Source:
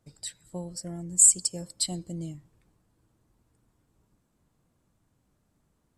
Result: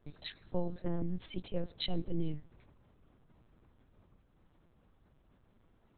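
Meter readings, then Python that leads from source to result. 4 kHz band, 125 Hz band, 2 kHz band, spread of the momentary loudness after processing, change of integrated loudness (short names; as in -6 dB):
-6.5 dB, -1.5 dB, n/a, 8 LU, -18.0 dB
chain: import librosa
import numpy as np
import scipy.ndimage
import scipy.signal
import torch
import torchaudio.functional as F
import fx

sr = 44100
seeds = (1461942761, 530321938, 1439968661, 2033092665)

y = fx.lpc_vocoder(x, sr, seeds[0], excitation='pitch_kept', order=8)
y = y * librosa.db_to_amplitude(4.5)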